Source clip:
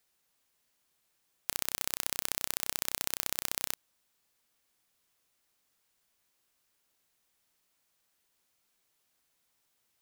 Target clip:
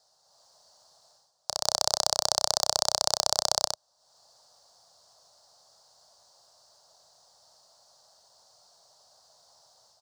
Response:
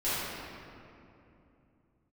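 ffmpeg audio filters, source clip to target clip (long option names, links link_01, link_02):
-filter_complex "[0:a]highpass=72,highshelf=frequency=4800:gain=9,dynaudnorm=framelen=220:gausssize=3:maxgain=7dB,firequalizer=gain_entry='entry(140,0);entry(280,-14);entry(620,14);entry(2300,-21);entry(4500,7);entry(12000,-25)':delay=0.05:min_phase=1,asettb=1/sr,asplit=3[link_01][link_02][link_03];[link_01]atrim=end=1.654[link_04];[link_02]atrim=start=1.65:end=3.67,asetpts=PTS-STARTPTS,afade=type=in:duration=0.004:curve=qsin,afade=type=out:start_time=2.016:duration=0.004:curve=qsin,acontrast=34[link_05];[link_03]atrim=start=3.666[link_06];[link_04][link_05]acrossfade=duration=0.004:curve1=hsin:curve2=qsin[link_07];[link_07][link_06]acrossfade=duration=0.004:curve1=qsin:curve2=hsin,volume=7dB"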